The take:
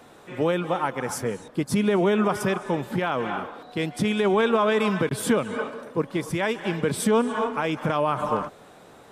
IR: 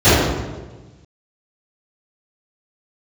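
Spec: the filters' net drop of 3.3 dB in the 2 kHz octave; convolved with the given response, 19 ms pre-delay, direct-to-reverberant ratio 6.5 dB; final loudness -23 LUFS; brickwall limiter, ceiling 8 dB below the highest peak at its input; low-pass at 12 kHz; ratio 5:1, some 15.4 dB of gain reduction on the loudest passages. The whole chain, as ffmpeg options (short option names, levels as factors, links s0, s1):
-filter_complex "[0:a]lowpass=12000,equalizer=f=2000:t=o:g=-4.5,acompressor=threshold=0.0178:ratio=5,alimiter=level_in=2.11:limit=0.0631:level=0:latency=1,volume=0.473,asplit=2[s0][s1];[1:a]atrim=start_sample=2205,adelay=19[s2];[s1][s2]afir=irnorm=-1:irlink=0,volume=0.015[s3];[s0][s3]amix=inputs=2:normalize=0,volume=5.62"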